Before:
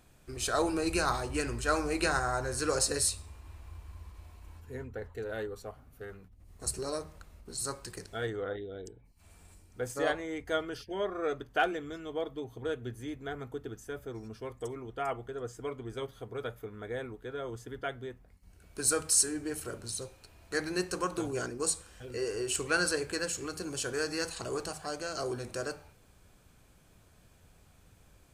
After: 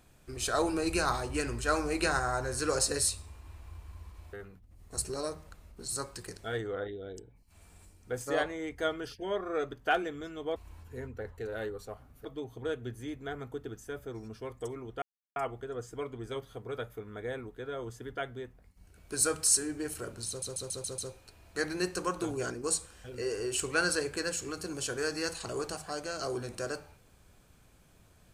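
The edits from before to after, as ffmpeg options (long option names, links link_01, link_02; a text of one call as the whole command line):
ffmpeg -i in.wav -filter_complex "[0:a]asplit=10[link_01][link_02][link_03][link_04][link_05][link_06][link_07][link_08][link_09][link_10];[link_01]atrim=end=4.332[link_11];[link_02]atrim=start=6.018:end=12.252[link_12];[link_03]atrim=start=4.328:end=6.022[link_13];[link_04]atrim=start=12.248:end=15.02,asetpts=PTS-STARTPTS,afade=type=out:start_time=2.768:duration=0.004:curve=hsin,apad=pad_dur=0.34[link_14];[link_05]atrim=start=15.02:end=20.082,asetpts=PTS-STARTPTS,afade=type=in:duration=0.004:curve=hsin[link_15];[link_06]atrim=start=19.938:end=20.082[link_16];[link_07]atrim=start=19.938:end=20.082[link_17];[link_08]atrim=start=19.938:end=20.082[link_18];[link_09]atrim=start=19.938:end=20.082[link_19];[link_10]atrim=start=19.938[link_20];[link_11][link_12]acrossfade=duration=0.004:curve1=hsin:curve2=hsin[link_21];[link_21][link_13]acrossfade=duration=0.004:curve1=hsin:curve2=hsin[link_22];[link_14][link_15]concat=n=2:v=0:a=1[link_23];[link_22][link_23]acrossfade=duration=0.004:curve1=hsin:curve2=hsin[link_24];[link_24][link_16]acrossfade=duration=0.004:curve1=hsin:curve2=hsin[link_25];[link_25][link_17]acrossfade=duration=0.004:curve1=hsin:curve2=hsin[link_26];[link_26][link_18]acrossfade=duration=0.004:curve1=hsin:curve2=hsin[link_27];[link_27][link_19]acrossfade=duration=0.004:curve1=hsin:curve2=hsin[link_28];[link_28][link_20]acrossfade=duration=0.004:curve1=hsin:curve2=hsin" out.wav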